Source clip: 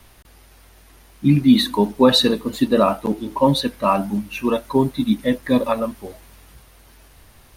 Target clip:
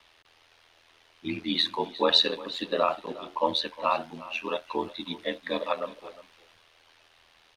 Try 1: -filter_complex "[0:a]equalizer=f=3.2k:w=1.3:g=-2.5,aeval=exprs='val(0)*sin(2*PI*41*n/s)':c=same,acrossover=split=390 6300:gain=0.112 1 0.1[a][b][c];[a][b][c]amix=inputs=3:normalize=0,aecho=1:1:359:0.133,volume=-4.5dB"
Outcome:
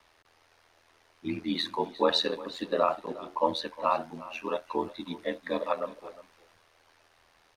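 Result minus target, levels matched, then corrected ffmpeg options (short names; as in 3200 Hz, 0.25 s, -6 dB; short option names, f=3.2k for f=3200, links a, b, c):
4000 Hz band -4.0 dB
-filter_complex "[0:a]equalizer=f=3.2k:w=1.3:g=6.5,aeval=exprs='val(0)*sin(2*PI*41*n/s)':c=same,acrossover=split=390 6300:gain=0.112 1 0.1[a][b][c];[a][b][c]amix=inputs=3:normalize=0,aecho=1:1:359:0.133,volume=-4.5dB"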